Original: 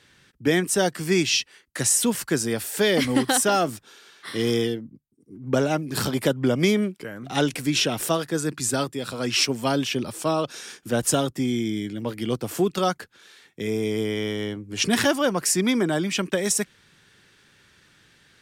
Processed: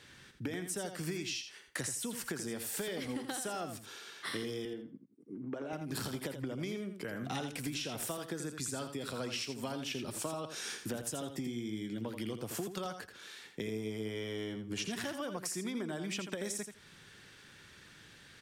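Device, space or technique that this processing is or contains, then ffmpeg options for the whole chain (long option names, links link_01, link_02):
serial compression, leveller first: -filter_complex "[0:a]acompressor=threshold=-24dB:ratio=3,acompressor=threshold=-36dB:ratio=10,asettb=1/sr,asplit=3[link_01][link_02][link_03];[link_01]atrim=end=4.654[link_04];[link_02]atrim=start=4.65:end=5.73,asetpts=PTS-STARTPTS,afade=type=in:duration=0.004:curve=qsin,afade=type=out:start_time=1.076:duration=0.004:curve=qsin,acrossover=split=160 2900:gain=0.0891 1 0.224[link_05][link_06][link_07];[link_05][link_06][link_07]amix=inputs=3:normalize=0[link_08];[link_03]atrim=start=5.726[link_09];[link_04][link_08]acrossfade=duration=0.004:curve1=hsin:curve2=qsin[link_10];[link_10][link_09]acrossfade=duration=0.004:curve1=qsin:curve2=hsin,aecho=1:1:83|166|249:0.398|0.0717|0.0129"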